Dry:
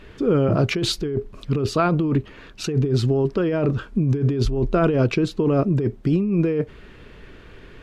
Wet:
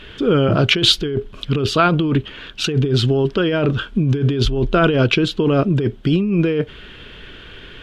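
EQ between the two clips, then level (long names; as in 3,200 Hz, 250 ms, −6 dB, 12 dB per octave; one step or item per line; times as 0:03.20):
parametric band 1,500 Hz +6.5 dB 0.32 octaves
parametric band 3,200 Hz +15 dB 0.62 octaves
+3.0 dB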